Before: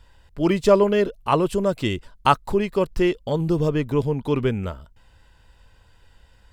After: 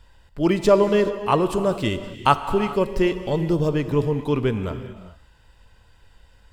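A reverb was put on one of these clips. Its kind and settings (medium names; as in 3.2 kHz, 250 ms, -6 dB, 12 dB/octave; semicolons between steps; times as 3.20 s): gated-style reverb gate 450 ms flat, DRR 9.5 dB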